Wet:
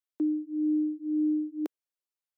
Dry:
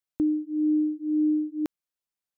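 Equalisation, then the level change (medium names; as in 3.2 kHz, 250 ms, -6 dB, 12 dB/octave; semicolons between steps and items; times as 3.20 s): high-pass 290 Hz 24 dB/octave; dynamic bell 430 Hz, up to +6 dB, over -40 dBFS, Q 0.88; -5.5 dB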